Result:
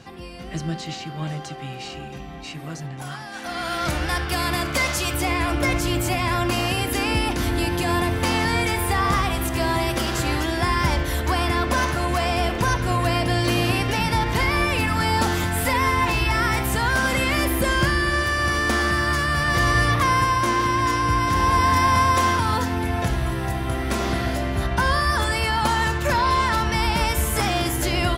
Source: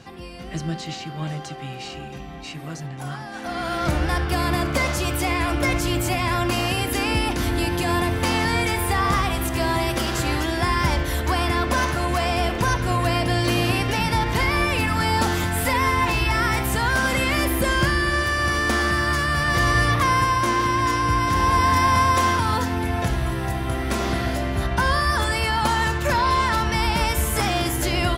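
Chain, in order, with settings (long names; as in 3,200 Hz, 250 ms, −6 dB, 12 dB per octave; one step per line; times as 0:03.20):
0:03.02–0:05.14: tilt shelving filter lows −4 dB, about 1,200 Hz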